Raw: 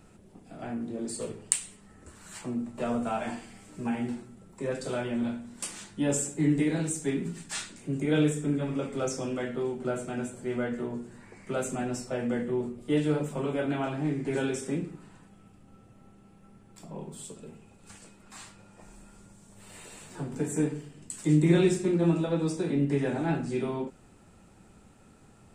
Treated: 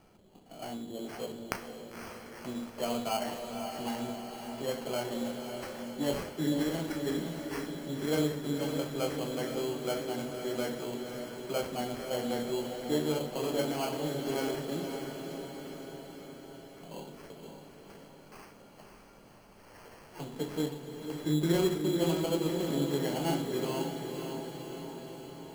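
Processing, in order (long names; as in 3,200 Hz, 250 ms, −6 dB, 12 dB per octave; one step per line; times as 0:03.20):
parametric band 770 Hz +9 dB 2.2 octaves
decimation without filtering 12×
on a send: feedback delay with all-pass diffusion 535 ms, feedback 65%, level −6 dB
on the sum: level −9 dB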